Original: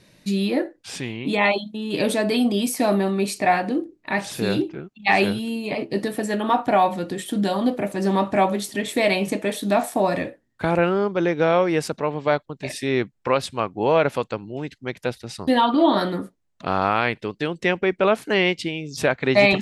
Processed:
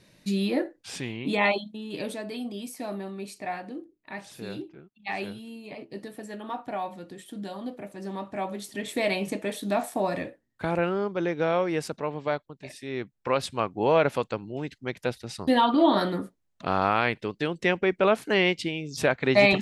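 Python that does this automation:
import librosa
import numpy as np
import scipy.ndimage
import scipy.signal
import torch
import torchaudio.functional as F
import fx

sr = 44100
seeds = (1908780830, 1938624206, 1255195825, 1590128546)

y = fx.gain(x, sr, db=fx.line((1.5, -4.0), (2.25, -14.5), (8.29, -14.5), (8.9, -6.5), (12.21, -6.5), (12.8, -13.5), (13.45, -3.0)))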